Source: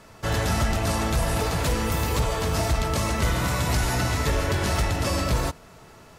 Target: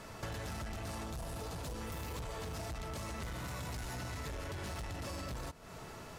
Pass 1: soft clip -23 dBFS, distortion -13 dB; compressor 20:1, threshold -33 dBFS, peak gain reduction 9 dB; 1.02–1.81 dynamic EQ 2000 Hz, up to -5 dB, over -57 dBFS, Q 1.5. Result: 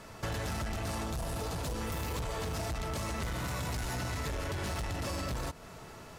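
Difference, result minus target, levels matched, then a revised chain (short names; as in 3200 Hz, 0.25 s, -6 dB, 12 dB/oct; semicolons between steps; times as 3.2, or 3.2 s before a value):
compressor: peak gain reduction -6 dB
soft clip -23 dBFS, distortion -13 dB; compressor 20:1, threshold -39.5 dBFS, peak gain reduction 15 dB; 1.02–1.81 dynamic EQ 2000 Hz, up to -5 dB, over -57 dBFS, Q 1.5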